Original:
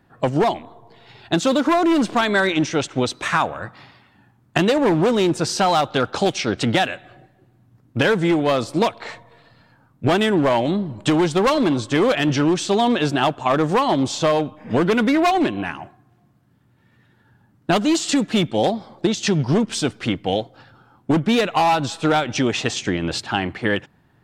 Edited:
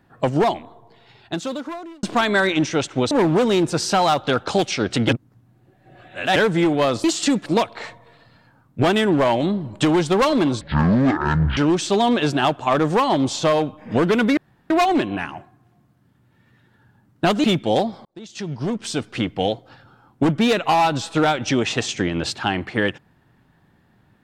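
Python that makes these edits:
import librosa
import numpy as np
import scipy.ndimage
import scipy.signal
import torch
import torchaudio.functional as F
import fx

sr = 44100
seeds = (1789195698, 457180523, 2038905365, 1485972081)

y = fx.edit(x, sr, fx.fade_out_span(start_s=0.49, length_s=1.54),
    fx.cut(start_s=3.11, length_s=1.67),
    fx.reverse_span(start_s=6.76, length_s=1.27),
    fx.speed_span(start_s=11.86, length_s=0.5, speed=0.52),
    fx.insert_room_tone(at_s=15.16, length_s=0.33),
    fx.move(start_s=17.9, length_s=0.42, to_s=8.71),
    fx.fade_in_span(start_s=18.93, length_s=1.29), tone=tone)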